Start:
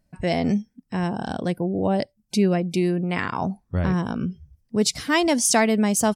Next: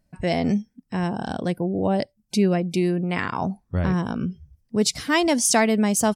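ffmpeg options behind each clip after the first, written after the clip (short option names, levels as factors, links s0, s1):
-af anull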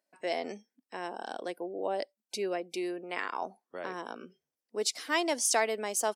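-af "highpass=f=360:w=0.5412,highpass=f=360:w=1.3066,volume=0.422"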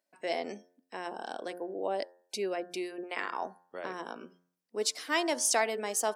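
-af "bandreject=f=88.62:t=h:w=4,bandreject=f=177.24:t=h:w=4,bandreject=f=265.86:t=h:w=4,bandreject=f=354.48:t=h:w=4,bandreject=f=443.1:t=h:w=4,bandreject=f=531.72:t=h:w=4,bandreject=f=620.34:t=h:w=4,bandreject=f=708.96:t=h:w=4,bandreject=f=797.58:t=h:w=4,bandreject=f=886.2:t=h:w=4,bandreject=f=974.82:t=h:w=4,bandreject=f=1063.44:t=h:w=4,bandreject=f=1152.06:t=h:w=4,bandreject=f=1240.68:t=h:w=4,bandreject=f=1329.3:t=h:w=4,bandreject=f=1417.92:t=h:w=4,bandreject=f=1506.54:t=h:w=4,bandreject=f=1595.16:t=h:w=4,bandreject=f=1683.78:t=h:w=4,bandreject=f=1772.4:t=h:w=4,bandreject=f=1861.02:t=h:w=4"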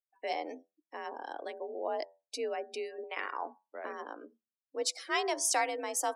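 -af "afftdn=nr=27:nf=-48,bandreject=f=50:t=h:w=6,bandreject=f=100:t=h:w=6,bandreject=f=150:t=h:w=6,afreqshift=53,volume=0.794"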